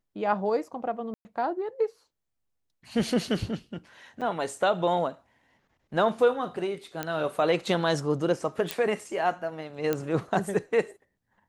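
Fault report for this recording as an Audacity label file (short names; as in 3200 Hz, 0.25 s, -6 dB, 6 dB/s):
1.140000	1.250000	gap 0.11 s
4.210000	4.220000	gap 6.3 ms
7.030000	7.030000	pop -14 dBFS
8.710000	8.710000	pop -11 dBFS
9.930000	9.930000	pop -13 dBFS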